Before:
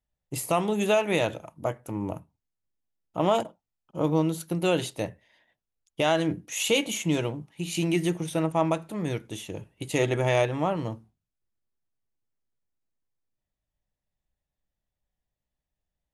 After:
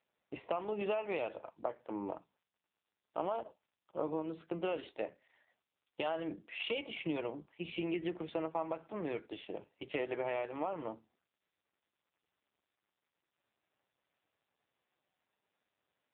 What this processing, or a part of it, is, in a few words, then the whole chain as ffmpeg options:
voicemail: -filter_complex "[0:a]asettb=1/sr,asplit=3[a][b][c];[a]atrim=end=4.584[d];[b]atrim=start=4.58:end=5.08,asetpts=PTS-STARTPTS,afade=t=in:d=0.004:c=qsin,afade=t=out:st=0.496:d=0.004:c=qsin,asplit=2[e][f];[f]adelay=26,volume=-12dB[g];[e][g]amix=inputs=2:normalize=0,atrim=end_sample=22050[h];[c]atrim=start=5.076[i];[d][h]acrossfade=d=0.004:c1=hsin:c2=qsin[j];[j][i]acrossfade=d=0.004:c1=qsin:c2=hsin,highpass=360,lowpass=2.8k,acompressor=threshold=-31dB:ratio=6,volume=-1dB" -ar 8000 -c:a libopencore_amrnb -b:a 5900

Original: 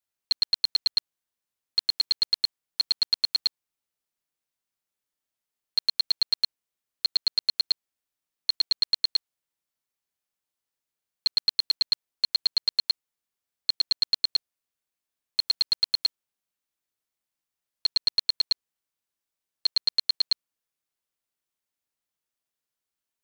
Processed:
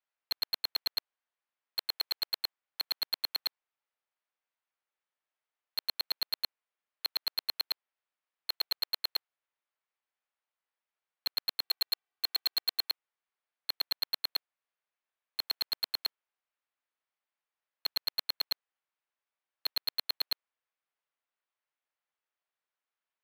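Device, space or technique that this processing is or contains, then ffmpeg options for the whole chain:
walkie-talkie: -filter_complex "[0:a]asettb=1/sr,asplit=3[a][b][c];[a]atrim=end=11.644[d];[b]atrim=start=11.64:end=12.89,asetpts=PTS-STARTPTS,afade=t=in:d=0.004:c=qsin,afade=t=out:st=1.246:d=0.004:c=qsin,aecho=1:1:2.6:0.68,atrim=end_sample=55125[e];[c]atrim=start=12.886[f];[d][e]acrossfade=d=0.004:c1=hsin:c2=qsin[g];[g][f]acrossfade=d=0.004:c1=qsin:c2=hsin,highpass=600,lowpass=2.4k,asoftclip=type=hard:threshold=-30.5dB,agate=range=-6dB:threshold=-36dB:ratio=16:detection=peak,volume=8.5dB"

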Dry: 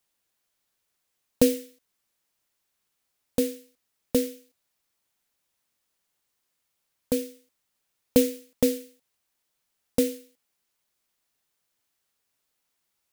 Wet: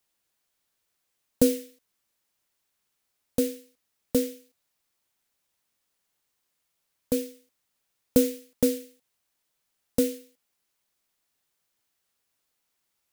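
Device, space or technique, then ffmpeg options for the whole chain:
one-band saturation: -filter_complex "[0:a]acrossover=split=570|4700[a][b][c];[b]asoftclip=type=tanh:threshold=-30dB[d];[a][d][c]amix=inputs=3:normalize=0"

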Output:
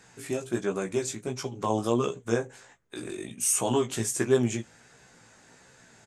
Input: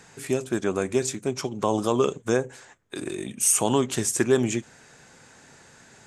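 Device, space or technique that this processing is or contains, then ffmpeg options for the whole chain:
double-tracked vocal: -filter_complex "[0:a]asplit=2[a][b];[b]adelay=17,volume=-11dB[c];[a][c]amix=inputs=2:normalize=0,flanger=delay=15:depth=3.6:speed=1.4,volume=-1.5dB"

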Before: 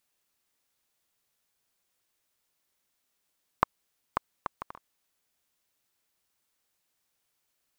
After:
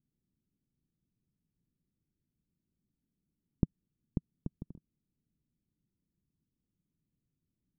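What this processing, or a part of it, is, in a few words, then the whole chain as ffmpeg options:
the neighbour's flat through the wall: -af "lowpass=f=270:w=0.5412,lowpass=f=270:w=1.3066,equalizer=f=160:t=o:w=0.77:g=5.5,volume=10.5dB"

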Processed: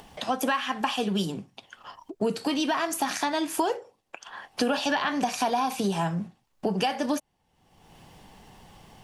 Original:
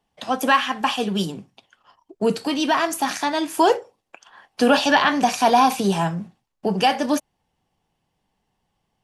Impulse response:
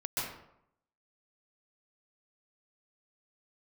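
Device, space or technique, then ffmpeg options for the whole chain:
upward and downward compression: -af "acompressor=mode=upward:threshold=-32dB:ratio=2.5,acompressor=threshold=-23dB:ratio=6"

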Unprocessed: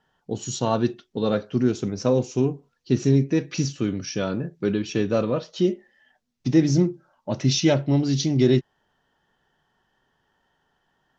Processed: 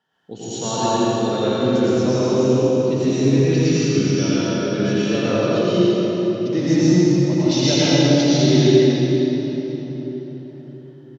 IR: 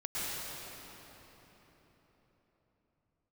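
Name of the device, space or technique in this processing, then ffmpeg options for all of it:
PA in a hall: -filter_complex "[0:a]highpass=140,equalizer=f=3.6k:t=o:w=1.3:g=4.5,aecho=1:1:83:0.531[a];[1:a]atrim=start_sample=2205[b];[a][b]afir=irnorm=-1:irlink=0,volume=-1dB"

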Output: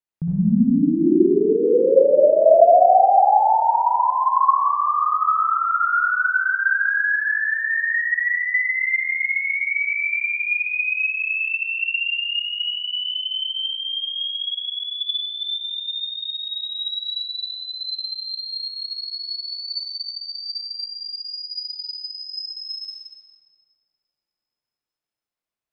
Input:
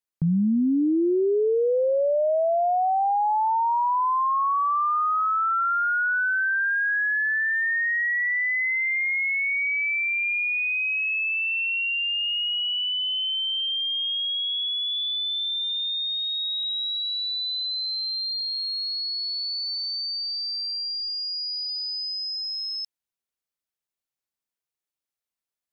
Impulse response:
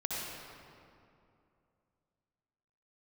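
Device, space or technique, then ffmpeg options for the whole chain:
swimming-pool hall: -filter_complex "[0:a]asplit=3[a][b][c];[a]afade=t=out:st=1.85:d=0.02[d];[b]equalizer=f=400:t=o:w=0.67:g=7,equalizer=f=1k:t=o:w=0.67:g=10,equalizer=f=2.5k:t=o:w=0.67:g=-10,afade=t=in:st=1.85:d=0.02,afade=t=out:st=3.07:d=0.02[e];[c]afade=t=in:st=3.07:d=0.02[f];[d][e][f]amix=inputs=3:normalize=0[g];[1:a]atrim=start_sample=2205[h];[g][h]afir=irnorm=-1:irlink=0,highshelf=f=4k:g=-8"

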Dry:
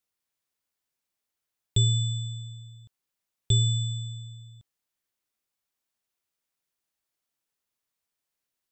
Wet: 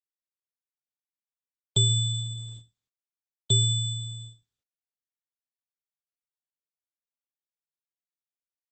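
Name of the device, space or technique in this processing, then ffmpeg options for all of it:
video call: -filter_complex "[0:a]asplit=3[a][b][c];[a]afade=t=out:st=1.88:d=0.02[d];[b]lowshelf=f=79:g=3,afade=t=in:st=1.88:d=0.02,afade=t=out:st=2.68:d=0.02[e];[c]afade=t=in:st=2.68:d=0.02[f];[d][e][f]amix=inputs=3:normalize=0,highpass=f=130:w=0.5412,highpass=f=130:w=1.3066,dynaudnorm=f=130:g=3:m=9dB,agate=range=-47dB:threshold=-36dB:ratio=16:detection=peak,volume=-4.5dB" -ar 48000 -c:a libopus -b:a 12k

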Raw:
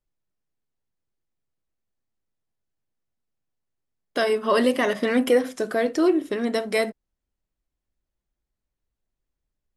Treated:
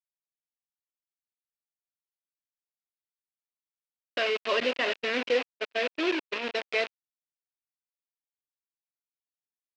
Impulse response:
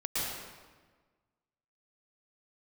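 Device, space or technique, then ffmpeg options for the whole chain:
hand-held game console: -filter_complex "[0:a]acrusher=bits=3:mix=0:aa=0.000001,highpass=420,equalizer=f=830:t=q:w=4:g=-6,equalizer=f=1.2k:t=q:w=4:g=-4,equalizer=f=2.6k:t=q:w=4:g=8,lowpass=f=4.4k:w=0.5412,lowpass=f=4.4k:w=1.3066,asettb=1/sr,asplit=3[a][b][c];[a]atrim=end=4.604[d];[b]atrim=start=4.6:end=6.61,asetpts=PTS-STARTPTS,afade=t=in:d=0.004:c=qsin,afade=t=out:st=2.006:d=0.004:c=qsin,agate=range=-31dB:threshold=-26dB:ratio=16:detection=peak[e];[c]atrim=start=6.606[f];[d][e]acrossfade=d=0.004:c1=hsin:c2=qsin[g];[g][f]acrossfade=d=0.004:c1=qsin:c2=hsin,volume=-5dB"

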